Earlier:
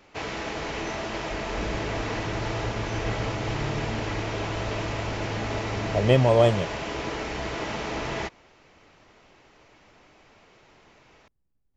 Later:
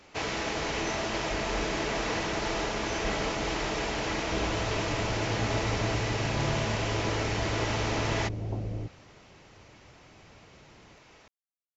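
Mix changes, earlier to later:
speech: muted; first sound: add bell 6500 Hz +5 dB 1.6 oct; second sound: entry +2.75 s

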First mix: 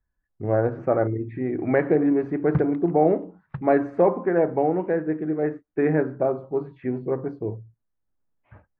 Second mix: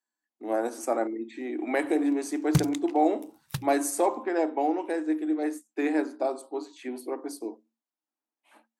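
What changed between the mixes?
speech: add rippled Chebyshev high-pass 220 Hz, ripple 9 dB; master: remove LPF 1700 Hz 24 dB/oct

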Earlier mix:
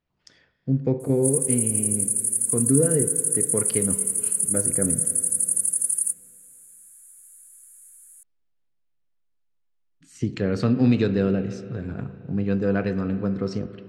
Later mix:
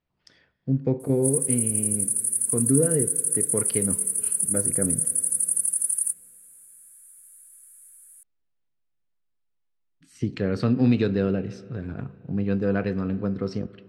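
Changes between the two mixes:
speech: send -7.0 dB; master: add bell 7000 Hz -8.5 dB 0.36 oct

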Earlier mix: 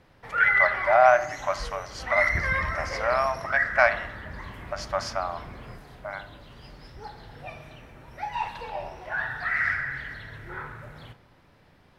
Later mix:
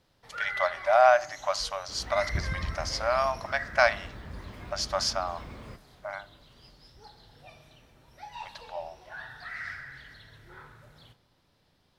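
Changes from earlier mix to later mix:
speech: send -8.5 dB; first sound -11.0 dB; master: add resonant high shelf 2900 Hz +7.5 dB, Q 1.5

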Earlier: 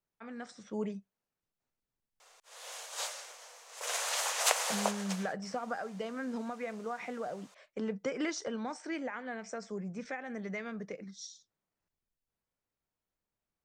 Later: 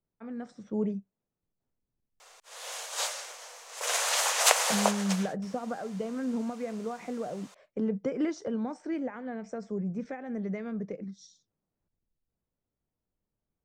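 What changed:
speech: add tilt shelf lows +8.5 dB, about 790 Hz; background +6.0 dB

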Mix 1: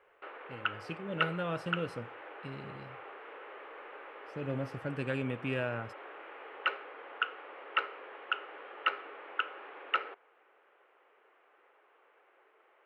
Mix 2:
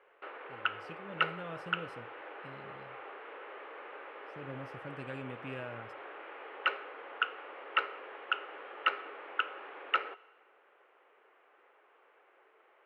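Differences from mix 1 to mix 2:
speech -9.0 dB; reverb: on, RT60 1.2 s

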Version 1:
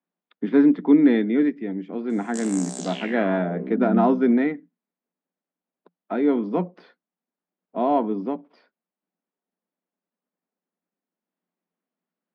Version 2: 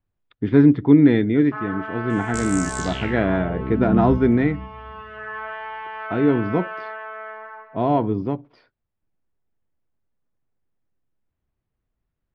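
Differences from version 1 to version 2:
first sound: unmuted; master: remove rippled Chebyshev high-pass 170 Hz, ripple 3 dB

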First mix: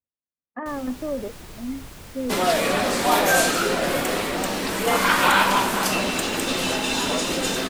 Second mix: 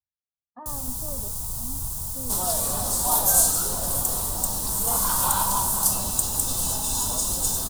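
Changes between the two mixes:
first sound +8.5 dB; master: add EQ curve 110 Hz 0 dB, 330 Hz -16 dB, 520 Hz -14 dB, 950 Hz -4 dB, 2200 Hz -29 dB, 3600 Hz -10 dB, 9100 Hz +10 dB

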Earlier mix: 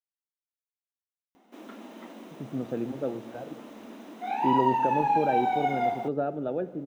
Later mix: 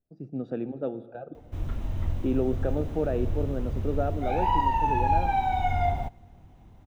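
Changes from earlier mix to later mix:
speech: entry -2.20 s; background: remove brick-wall FIR high-pass 200 Hz

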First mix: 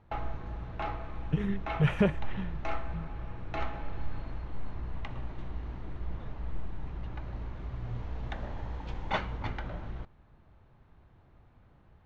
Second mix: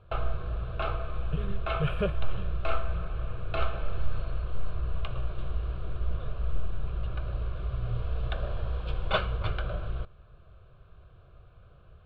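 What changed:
background +7.5 dB; master: add fixed phaser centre 1300 Hz, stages 8

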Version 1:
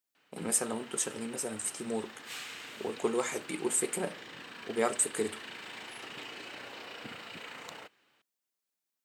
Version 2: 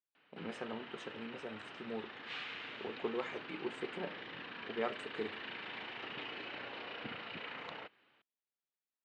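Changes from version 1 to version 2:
speech -7.5 dB; master: add LPF 3600 Hz 24 dB/oct

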